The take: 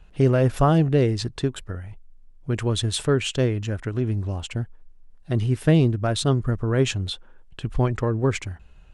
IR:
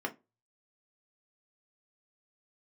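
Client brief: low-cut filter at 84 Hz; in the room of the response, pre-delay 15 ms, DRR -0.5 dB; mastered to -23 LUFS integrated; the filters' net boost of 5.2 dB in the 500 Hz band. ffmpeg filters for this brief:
-filter_complex "[0:a]highpass=84,equalizer=f=500:t=o:g=6.5,asplit=2[a][b];[1:a]atrim=start_sample=2205,adelay=15[c];[b][c]afir=irnorm=-1:irlink=0,volume=-4dB[d];[a][d]amix=inputs=2:normalize=0,volume=-6dB"

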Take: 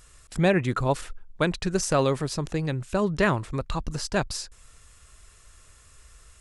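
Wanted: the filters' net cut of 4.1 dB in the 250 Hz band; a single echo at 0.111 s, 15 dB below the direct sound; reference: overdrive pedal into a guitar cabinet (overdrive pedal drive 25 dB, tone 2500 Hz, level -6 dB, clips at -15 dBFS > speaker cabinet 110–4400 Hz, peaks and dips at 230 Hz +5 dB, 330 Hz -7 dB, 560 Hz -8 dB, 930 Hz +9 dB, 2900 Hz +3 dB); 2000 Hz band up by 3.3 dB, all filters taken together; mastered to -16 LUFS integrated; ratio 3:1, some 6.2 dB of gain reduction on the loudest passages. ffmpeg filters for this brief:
-filter_complex "[0:a]equalizer=f=250:t=o:g=-6.5,equalizer=f=2k:t=o:g=3.5,acompressor=threshold=-26dB:ratio=3,aecho=1:1:111:0.178,asplit=2[a][b];[b]highpass=f=720:p=1,volume=25dB,asoftclip=type=tanh:threshold=-15dB[c];[a][c]amix=inputs=2:normalize=0,lowpass=f=2.5k:p=1,volume=-6dB,highpass=110,equalizer=f=230:t=q:w=4:g=5,equalizer=f=330:t=q:w=4:g=-7,equalizer=f=560:t=q:w=4:g=-8,equalizer=f=930:t=q:w=4:g=9,equalizer=f=2.9k:t=q:w=4:g=3,lowpass=f=4.4k:w=0.5412,lowpass=f=4.4k:w=1.3066,volume=9dB"

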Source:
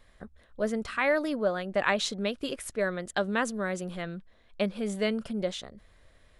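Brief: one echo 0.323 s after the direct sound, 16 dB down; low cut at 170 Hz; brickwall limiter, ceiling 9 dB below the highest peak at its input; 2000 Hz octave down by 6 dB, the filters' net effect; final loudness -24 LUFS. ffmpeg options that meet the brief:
-af "highpass=170,equalizer=f=2k:t=o:g=-7.5,alimiter=limit=-22dB:level=0:latency=1,aecho=1:1:323:0.158,volume=9.5dB"

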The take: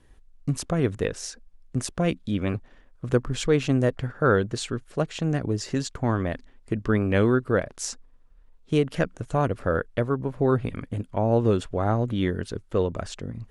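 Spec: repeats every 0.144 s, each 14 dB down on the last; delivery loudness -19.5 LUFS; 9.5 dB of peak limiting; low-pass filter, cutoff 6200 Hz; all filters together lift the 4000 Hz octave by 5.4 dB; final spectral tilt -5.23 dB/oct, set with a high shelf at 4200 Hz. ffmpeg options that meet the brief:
-af "lowpass=6.2k,equalizer=f=4k:t=o:g=3.5,highshelf=f=4.2k:g=7.5,alimiter=limit=-17dB:level=0:latency=1,aecho=1:1:144|288:0.2|0.0399,volume=9.5dB"

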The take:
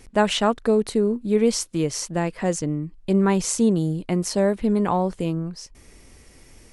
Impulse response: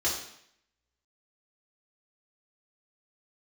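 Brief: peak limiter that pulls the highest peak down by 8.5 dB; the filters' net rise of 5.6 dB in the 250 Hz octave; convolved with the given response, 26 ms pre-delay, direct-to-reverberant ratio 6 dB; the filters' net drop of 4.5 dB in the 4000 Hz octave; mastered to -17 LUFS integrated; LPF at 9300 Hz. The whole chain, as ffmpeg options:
-filter_complex "[0:a]lowpass=9.3k,equalizer=f=250:t=o:g=7.5,equalizer=f=4k:t=o:g=-6.5,alimiter=limit=-12dB:level=0:latency=1,asplit=2[a][b];[1:a]atrim=start_sample=2205,adelay=26[c];[b][c]afir=irnorm=-1:irlink=0,volume=-14.5dB[d];[a][d]amix=inputs=2:normalize=0,volume=4.5dB"

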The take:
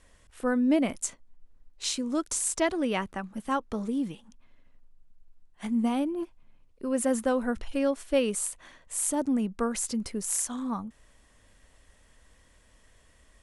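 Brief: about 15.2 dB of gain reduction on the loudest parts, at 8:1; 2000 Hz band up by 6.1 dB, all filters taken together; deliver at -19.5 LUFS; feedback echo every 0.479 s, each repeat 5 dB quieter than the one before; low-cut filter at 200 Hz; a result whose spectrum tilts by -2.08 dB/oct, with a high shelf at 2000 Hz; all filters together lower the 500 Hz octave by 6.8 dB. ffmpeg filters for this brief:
-af "highpass=200,equalizer=f=500:t=o:g=-8.5,highshelf=f=2k:g=3.5,equalizer=f=2k:t=o:g=6,acompressor=threshold=-38dB:ratio=8,aecho=1:1:479|958|1437|1916|2395|2874|3353:0.562|0.315|0.176|0.0988|0.0553|0.031|0.0173,volume=21dB"

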